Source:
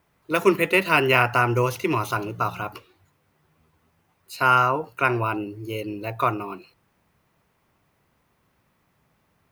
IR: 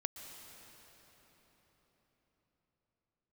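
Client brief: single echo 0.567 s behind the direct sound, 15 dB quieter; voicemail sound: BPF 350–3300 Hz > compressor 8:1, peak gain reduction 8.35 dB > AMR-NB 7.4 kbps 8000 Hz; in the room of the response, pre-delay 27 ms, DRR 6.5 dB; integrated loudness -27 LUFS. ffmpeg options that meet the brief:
-filter_complex "[0:a]aecho=1:1:567:0.178,asplit=2[a][b];[1:a]atrim=start_sample=2205,adelay=27[c];[b][c]afir=irnorm=-1:irlink=0,volume=-6dB[d];[a][d]amix=inputs=2:normalize=0,highpass=350,lowpass=3.3k,acompressor=threshold=-21dB:ratio=8,volume=2dB" -ar 8000 -c:a libopencore_amrnb -b:a 7400

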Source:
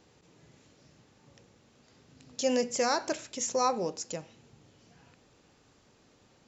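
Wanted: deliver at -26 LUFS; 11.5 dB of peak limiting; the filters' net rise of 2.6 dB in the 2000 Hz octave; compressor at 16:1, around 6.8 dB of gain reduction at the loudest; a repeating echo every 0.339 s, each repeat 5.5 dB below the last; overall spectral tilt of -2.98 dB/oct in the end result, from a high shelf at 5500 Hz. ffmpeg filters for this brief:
-af "equalizer=f=2k:t=o:g=4.5,highshelf=f=5.5k:g=-8,acompressor=threshold=-29dB:ratio=16,alimiter=level_in=8dB:limit=-24dB:level=0:latency=1,volume=-8dB,aecho=1:1:339|678|1017|1356|1695|2034|2373:0.531|0.281|0.149|0.079|0.0419|0.0222|0.0118,volume=16dB"

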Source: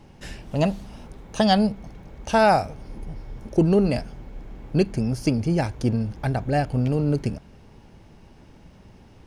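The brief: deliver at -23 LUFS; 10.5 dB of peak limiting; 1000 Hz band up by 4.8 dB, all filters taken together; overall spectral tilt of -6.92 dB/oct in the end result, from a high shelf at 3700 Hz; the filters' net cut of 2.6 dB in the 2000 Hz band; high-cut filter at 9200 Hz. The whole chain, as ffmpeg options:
-af "lowpass=9.2k,equalizer=f=1k:t=o:g=8.5,equalizer=f=2k:t=o:g=-6.5,highshelf=f=3.7k:g=-7,volume=3dB,alimiter=limit=-12dB:level=0:latency=1"

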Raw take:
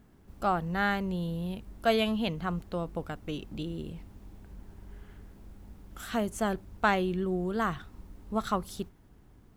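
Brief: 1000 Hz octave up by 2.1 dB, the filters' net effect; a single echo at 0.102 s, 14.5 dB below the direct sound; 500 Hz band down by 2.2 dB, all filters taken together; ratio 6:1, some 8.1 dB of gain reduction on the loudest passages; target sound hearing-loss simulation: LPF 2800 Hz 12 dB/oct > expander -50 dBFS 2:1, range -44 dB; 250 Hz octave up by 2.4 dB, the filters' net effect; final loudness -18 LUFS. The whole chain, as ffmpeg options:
-af "equalizer=f=250:t=o:g=4.5,equalizer=f=500:t=o:g=-6.5,equalizer=f=1k:t=o:g=5,acompressor=threshold=-28dB:ratio=6,lowpass=2.8k,aecho=1:1:102:0.188,agate=range=-44dB:threshold=-50dB:ratio=2,volume=16.5dB"

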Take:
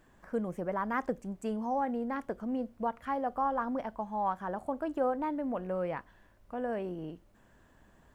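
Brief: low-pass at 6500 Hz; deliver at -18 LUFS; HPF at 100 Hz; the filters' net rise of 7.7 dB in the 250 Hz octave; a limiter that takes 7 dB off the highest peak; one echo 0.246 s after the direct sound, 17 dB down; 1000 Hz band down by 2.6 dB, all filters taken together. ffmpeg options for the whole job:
-af "highpass=100,lowpass=6.5k,equalizer=f=250:t=o:g=9,equalizer=f=1k:t=o:g=-4,alimiter=limit=-24dB:level=0:latency=1,aecho=1:1:246:0.141,volume=14.5dB"

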